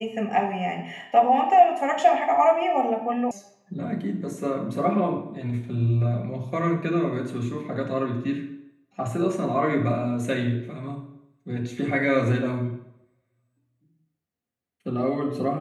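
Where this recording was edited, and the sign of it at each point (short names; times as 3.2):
3.31 sound cut off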